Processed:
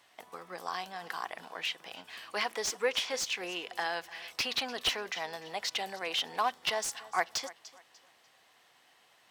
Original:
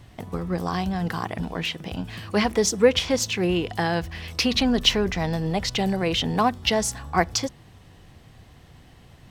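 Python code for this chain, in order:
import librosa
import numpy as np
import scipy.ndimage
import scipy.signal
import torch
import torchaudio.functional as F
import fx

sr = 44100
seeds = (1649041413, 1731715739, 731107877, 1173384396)

p1 = scipy.signal.sosfilt(scipy.signal.butter(2, 770.0, 'highpass', fs=sr, output='sos'), x)
p2 = p1 + fx.echo_feedback(p1, sr, ms=296, feedback_pct=31, wet_db=-19.5, dry=0)
p3 = fx.slew_limit(p2, sr, full_power_hz=360.0)
y = F.gain(torch.from_numpy(p3), -5.5).numpy()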